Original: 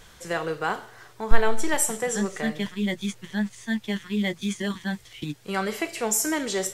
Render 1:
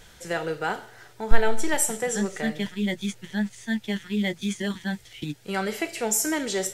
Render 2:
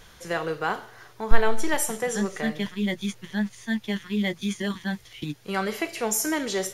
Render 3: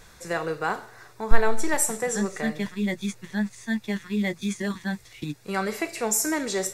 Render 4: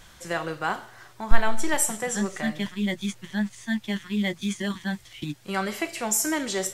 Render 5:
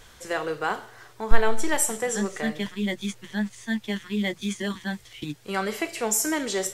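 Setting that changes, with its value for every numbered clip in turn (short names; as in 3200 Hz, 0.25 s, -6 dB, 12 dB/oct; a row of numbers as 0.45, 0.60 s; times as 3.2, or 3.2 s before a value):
notch, frequency: 1100, 7900, 3100, 450, 170 Hz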